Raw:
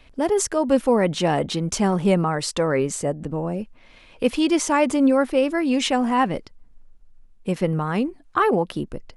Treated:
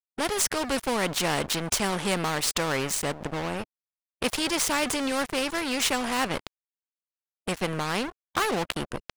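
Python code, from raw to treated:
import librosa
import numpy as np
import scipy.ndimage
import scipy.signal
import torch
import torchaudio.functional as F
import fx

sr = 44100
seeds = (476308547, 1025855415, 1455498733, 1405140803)

y = np.sign(x) * np.maximum(np.abs(x) - 10.0 ** (-35.0 / 20.0), 0.0)
y = fx.spectral_comp(y, sr, ratio=2.0)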